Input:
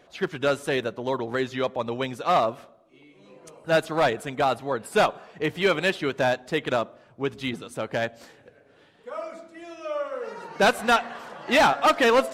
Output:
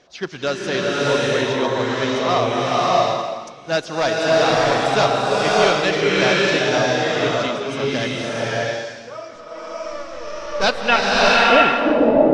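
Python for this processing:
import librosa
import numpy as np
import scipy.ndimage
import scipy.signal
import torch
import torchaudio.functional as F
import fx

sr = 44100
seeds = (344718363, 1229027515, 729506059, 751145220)

y = fx.halfwave_gain(x, sr, db=-12.0, at=(9.35, 10.64))
y = fx.filter_sweep_lowpass(y, sr, from_hz=5600.0, to_hz=300.0, start_s=10.62, end_s=11.78, q=4.0)
y = fx.rev_bloom(y, sr, seeds[0], attack_ms=660, drr_db=-6.5)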